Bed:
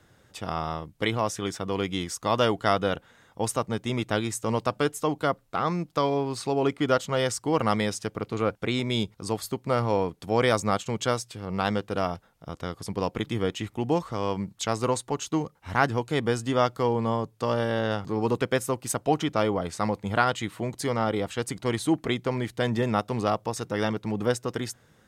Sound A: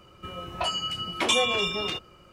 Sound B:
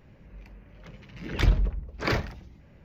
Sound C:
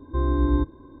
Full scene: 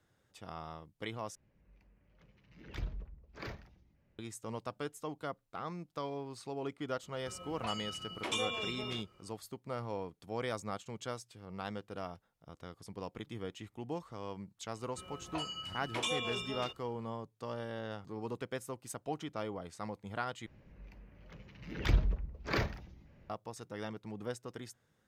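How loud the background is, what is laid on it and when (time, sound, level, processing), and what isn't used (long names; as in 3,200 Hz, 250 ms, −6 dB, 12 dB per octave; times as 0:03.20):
bed −15 dB
0:01.35: overwrite with B −18 dB
0:07.03: mix in A −12.5 dB
0:14.74: mix in A −12.5 dB
0:20.46: overwrite with B −6.5 dB
not used: C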